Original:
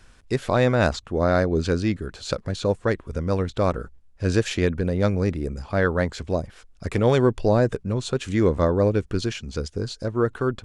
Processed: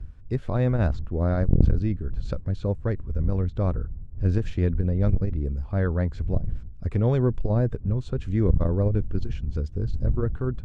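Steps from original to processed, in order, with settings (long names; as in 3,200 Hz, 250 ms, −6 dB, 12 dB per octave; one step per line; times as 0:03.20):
wind on the microphone 91 Hz −31 dBFS
RIAA equalisation playback
saturating transformer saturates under 160 Hz
level −10 dB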